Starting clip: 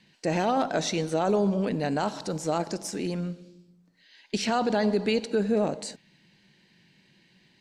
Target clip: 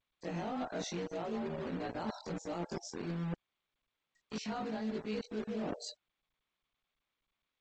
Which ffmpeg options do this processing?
ffmpeg -i in.wav -filter_complex "[0:a]afftfilt=real='re':imag='-im':win_size=2048:overlap=0.75,acrossover=split=510[link_01][link_02];[link_01]acrusher=bits=5:mix=0:aa=0.000001[link_03];[link_03][link_02]amix=inputs=2:normalize=0,afftfilt=real='re*gte(hypot(re,im),0.00794)':imag='im*gte(hypot(re,im),0.00794)':win_size=1024:overlap=0.75,adynamicequalizer=threshold=0.00891:dfrequency=230:dqfactor=0.81:tfrequency=230:tqfactor=0.81:attack=5:release=100:ratio=0.375:range=2.5:mode=boostabove:tftype=bell,areverse,acompressor=threshold=-38dB:ratio=6,areverse,volume=1.5dB" -ar 16000 -c:a g722 out.g722

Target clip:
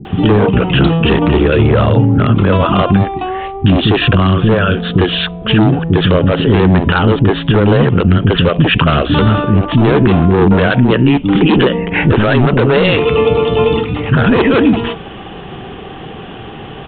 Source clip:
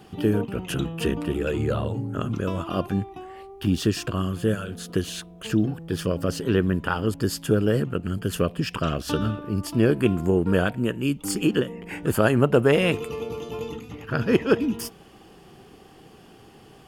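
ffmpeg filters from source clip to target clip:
ffmpeg -i in.wav -filter_complex "[0:a]aresample=8000,asoftclip=type=hard:threshold=-20.5dB,aresample=44100,acrossover=split=310[link_01][link_02];[link_02]adelay=50[link_03];[link_01][link_03]amix=inputs=2:normalize=0,alimiter=level_in=23dB:limit=-1dB:release=50:level=0:latency=1,volume=-1dB" out.wav

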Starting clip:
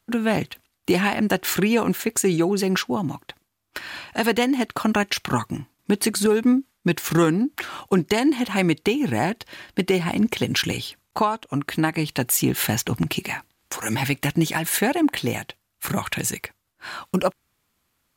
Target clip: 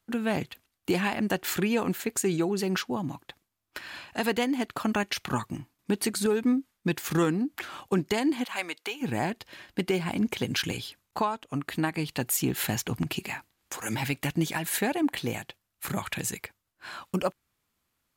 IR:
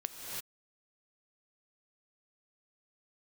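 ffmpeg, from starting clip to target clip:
-filter_complex "[0:a]asplit=3[link_01][link_02][link_03];[link_01]afade=type=out:start_time=8.43:duration=0.02[link_04];[link_02]highpass=740,afade=type=in:start_time=8.43:duration=0.02,afade=type=out:start_time=9.01:duration=0.02[link_05];[link_03]afade=type=in:start_time=9.01:duration=0.02[link_06];[link_04][link_05][link_06]amix=inputs=3:normalize=0,volume=-6.5dB"

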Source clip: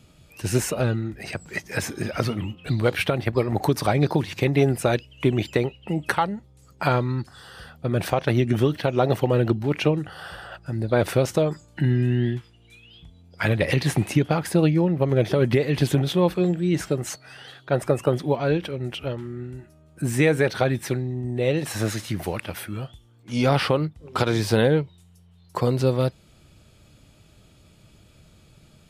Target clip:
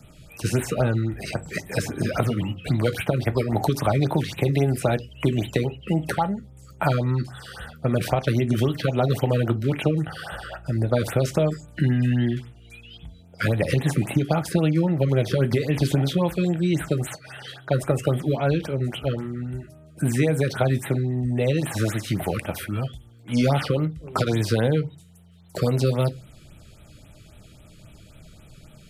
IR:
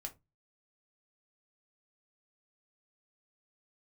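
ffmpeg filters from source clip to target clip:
-filter_complex "[0:a]acrossover=split=210|1400|3700[link_01][link_02][link_03][link_04];[link_01]acompressor=threshold=-28dB:ratio=4[link_05];[link_02]acompressor=threshold=-26dB:ratio=4[link_06];[link_03]acompressor=threshold=-42dB:ratio=4[link_07];[link_04]acompressor=threshold=-41dB:ratio=4[link_08];[link_05][link_06][link_07][link_08]amix=inputs=4:normalize=0,asplit=2[link_09][link_10];[1:a]atrim=start_sample=2205[link_11];[link_10][link_11]afir=irnorm=-1:irlink=0,volume=2.5dB[link_12];[link_09][link_12]amix=inputs=2:normalize=0,afftfilt=real='re*(1-between(b*sr/1024,750*pow(5900/750,0.5+0.5*sin(2*PI*3.7*pts/sr))/1.41,750*pow(5900/750,0.5+0.5*sin(2*PI*3.7*pts/sr))*1.41))':imag='im*(1-between(b*sr/1024,750*pow(5900/750,0.5+0.5*sin(2*PI*3.7*pts/sr))/1.41,750*pow(5900/750,0.5+0.5*sin(2*PI*3.7*pts/sr))*1.41))':win_size=1024:overlap=0.75"

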